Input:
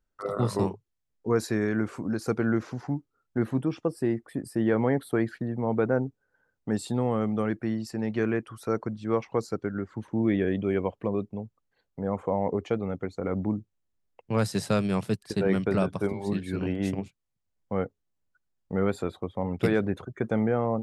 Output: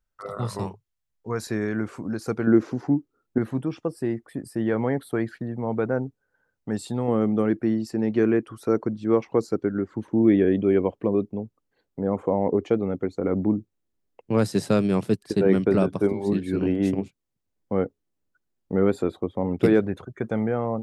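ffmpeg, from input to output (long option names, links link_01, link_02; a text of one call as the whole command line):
ffmpeg -i in.wav -af "asetnsamples=nb_out_samples=441:pad=0,asendcmd='1.47 equalizer g 0;2.47 equalizer g 11;3.38 equalizer g 0;7.08 equalizer g 8.5;19.8 equalizer g 0.5',equalizer=frequency=320:width_type=o:width=1.4:gain=-7.5" out.wav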